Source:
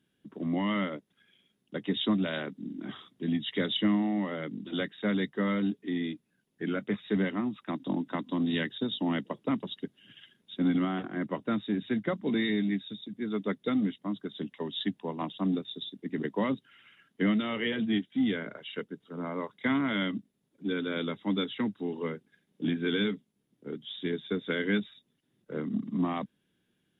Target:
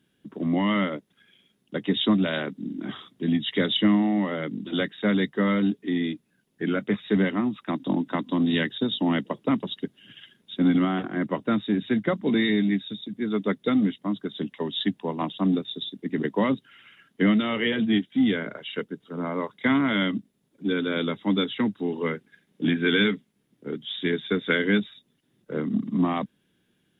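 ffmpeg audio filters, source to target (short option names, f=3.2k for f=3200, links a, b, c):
-filter_complex "[0:a]asplit=3[a][b][c];[a]afade=t=out:st=22.05:d=0.02[d];[b]adynamicequalizer=threshold=0.00398:dfrequency=1900:dqfactor=0.98:tfrequency=1900:tqfactor=0.98:attack=5:release=100:ratio=0.375:range=3:mode=boostabove:tftype=bell,afade=t=in:st=22.05:d=0.02,afade=t=out:st=24.56:d=0.02[e];[c]afade=t=in:st=24.56:d=0.02[f];[d][e][f]amix=inputs=3:normalize=0,volume=6dB"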